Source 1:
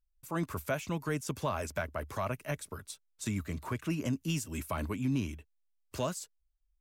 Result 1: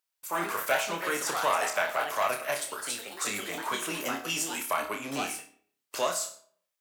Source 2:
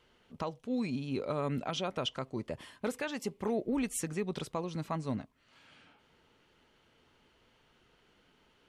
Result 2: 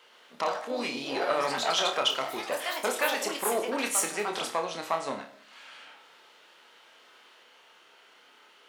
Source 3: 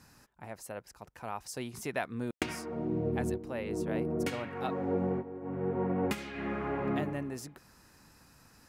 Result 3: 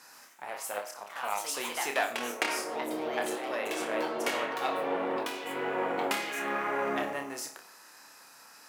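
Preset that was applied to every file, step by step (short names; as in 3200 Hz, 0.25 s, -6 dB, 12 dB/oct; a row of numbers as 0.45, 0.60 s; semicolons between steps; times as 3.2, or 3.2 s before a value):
one diode to ground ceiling -26.5 dBFS; HPF 620 Hz 12 dB/oct; flutter echo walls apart 5 m, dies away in 0.31 s; digital reverb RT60 0.6 s, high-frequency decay 0.6×, pre-delay 55 ms, DRR 16.5 dB; echoes that change speed 0.124 s, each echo +3 st, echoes 3, each echo -6 dB; normalise peaks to -12 dBFS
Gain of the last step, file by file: +9.5, +11.0, +7.5 dB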